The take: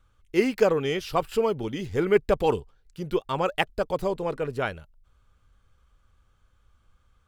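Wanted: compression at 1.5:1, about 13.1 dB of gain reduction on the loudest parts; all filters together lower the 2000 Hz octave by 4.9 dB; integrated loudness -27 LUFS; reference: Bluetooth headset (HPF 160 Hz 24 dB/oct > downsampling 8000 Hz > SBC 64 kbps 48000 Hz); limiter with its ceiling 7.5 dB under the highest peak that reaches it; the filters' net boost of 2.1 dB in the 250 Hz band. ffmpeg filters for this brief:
-af "equalizer=f=250:t=o:g=3.5,equalizer=f=2k:t=o:g=-6.5,acompressor=threshold=-52dB:ratio=1.5,alimiter=level_in=3.5dB:limit=-24dB:level=0:latency=1,volume=-3.5dB,highpass=f=160:w=0.5412,highpass=f=160:w=1.3066,aresample=8000,aresample=44100,volume=12.5dB" -ar 48000 -c:a sbc -b:a 64k

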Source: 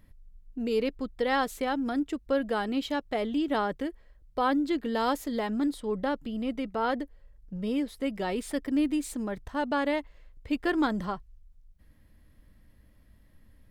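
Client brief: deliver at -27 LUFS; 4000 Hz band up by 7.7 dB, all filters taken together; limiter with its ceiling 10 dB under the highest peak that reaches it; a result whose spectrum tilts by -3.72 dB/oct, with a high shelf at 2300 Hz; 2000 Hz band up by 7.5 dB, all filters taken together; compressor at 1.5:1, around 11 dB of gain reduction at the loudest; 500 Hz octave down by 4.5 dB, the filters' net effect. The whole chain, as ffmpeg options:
-af "equalizer=f=500:t=o:g=-6,equalizer=f=2k:t=o:g=7.5,highshelf=f=2.3k:g=3,equalizer=f=4k:t=o:g=4.5,acompressor=threshold=-51dB:ratio=1.5,volume=14dB,alimiter=limit=-16.5dB:level=0:latency=1"

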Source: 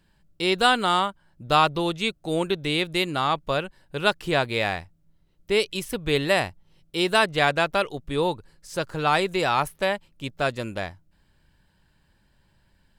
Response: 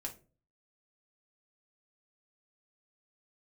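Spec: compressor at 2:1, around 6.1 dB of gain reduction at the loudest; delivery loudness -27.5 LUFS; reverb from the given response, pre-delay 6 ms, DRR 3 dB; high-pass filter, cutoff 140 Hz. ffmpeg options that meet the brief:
-filter_complex "[0:a]highpass=140,acompressor=threshold=-25dB:ratio=2,asplit=2[a][b];[1:a]atrim=start_sample=2205,adelay=6[c];[b][c]afir=irnorm=-1:irlink=0,volume=-1.5dB[d];[a][d]amix=inputs=2:normalize=0,volume=-1dB"

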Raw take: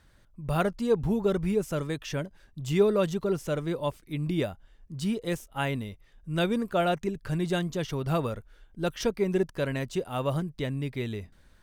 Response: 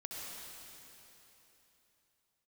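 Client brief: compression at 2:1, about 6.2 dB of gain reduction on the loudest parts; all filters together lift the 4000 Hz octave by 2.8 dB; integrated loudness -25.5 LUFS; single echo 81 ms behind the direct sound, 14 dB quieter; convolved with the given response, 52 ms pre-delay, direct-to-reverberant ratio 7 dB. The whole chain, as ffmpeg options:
-filter_complex "[0:a]equalizer=f=4k:t=o:g=3.5,acompressor=threshold=-29dB:ratio=2,aecho=1:1:81:0.2,asplit=2[a][b];[1:a]atrim=start_sample=2205,adelay=52[c];[b][c]afir=irnorm=-1:irlink=0,volume=-6.5dB[d];[a][d]amix=inputs=2:normalize=0,volume=6.5dB"

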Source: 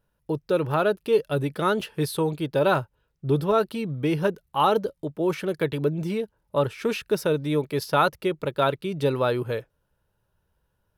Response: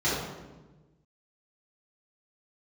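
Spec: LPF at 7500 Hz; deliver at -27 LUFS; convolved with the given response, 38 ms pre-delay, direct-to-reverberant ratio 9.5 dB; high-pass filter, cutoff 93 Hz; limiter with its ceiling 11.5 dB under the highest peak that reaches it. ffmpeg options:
-filter_complex "[0:a]highpass=93,lowpass=7.5k,alimiter=limit=-19dB:level=0:latency=1,asplit=2[a][b];[1:a]atrim=start_sample=2205,adelay=38[c];[b][c]afir=irnorm=-1:irlink=0,volume=-23dB[d];[a][d]amix=inputs=2:normalize=0,volume=1.5dB"

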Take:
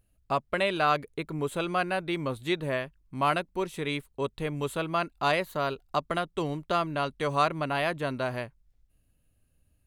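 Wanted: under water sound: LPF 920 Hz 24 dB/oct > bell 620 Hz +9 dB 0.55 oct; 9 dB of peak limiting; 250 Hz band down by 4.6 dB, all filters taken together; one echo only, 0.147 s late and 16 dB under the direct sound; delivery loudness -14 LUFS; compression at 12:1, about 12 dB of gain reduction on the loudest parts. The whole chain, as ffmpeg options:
-af "equalizer=f=250:t=o:g=-8.5,acompressor=threshold=-32dB:ratio=12,alimiter=level_in=6dB:limit=-24dB:level=0:latency=1,volume=-6dB,lowpass=f=920:w=0.5412,lowpass=f=920:w=1.3066,equalizer=f=620:t=o:w=0.55:g=9,aecho=1:1:147:0.158,volume=25.5dB"

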